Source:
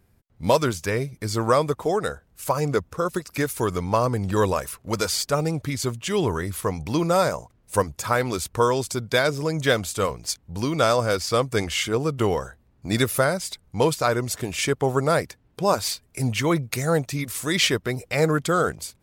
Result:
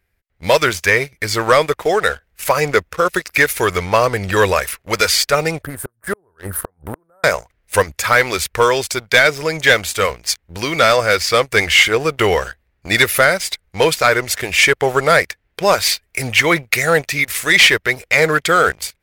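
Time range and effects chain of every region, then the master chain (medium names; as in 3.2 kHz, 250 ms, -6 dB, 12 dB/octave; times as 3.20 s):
5.63–7.24 s: Chebyshev band-stop 1.6–8.9 kHz, order 4 + inverted gate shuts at -17 dBFS, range -32 dB
whole clip: graphic EQ 125/250/1000/2000/8000 Hz -10/-11/-6/+10/-4 dB; waveshaping leveller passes 2; level rider gain up to 7 dB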